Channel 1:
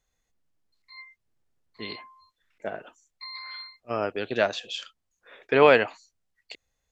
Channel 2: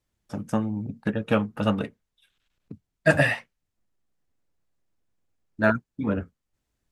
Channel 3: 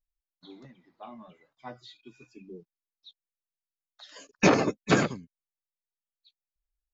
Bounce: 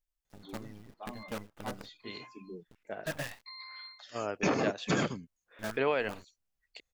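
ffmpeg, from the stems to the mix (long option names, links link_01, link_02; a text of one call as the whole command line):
ffmpeg -i stem1.wav -i stem2.wav -i stem3.wav -filter_complex "[0:a]adelay=250,volume=-7.5dB[link_01];[1:a]bandreject=frequency=1400:width=18,acrusher=bits=4:dc=4:mix=0:aa=0.000001,volume=-18dB[link_02];[2:a]bandreject=frequency=3900:width=10,volume=-0.5dB[link_03];[link_01][link_02][link_03]amix=inputs=3:normalize=0,alimiter=limit=-18.5dB:level=0:latency=1:release=175" out.wav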